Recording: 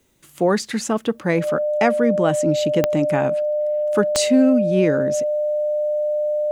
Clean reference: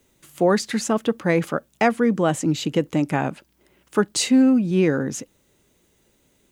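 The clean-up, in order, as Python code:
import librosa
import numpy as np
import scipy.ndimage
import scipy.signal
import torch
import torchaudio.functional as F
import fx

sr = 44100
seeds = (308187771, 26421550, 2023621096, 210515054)

y = fx.fix_declick_ar(x, sr, threshold=10.0)
y = fx.notch(y, sr, hz=600.0, q=30.0)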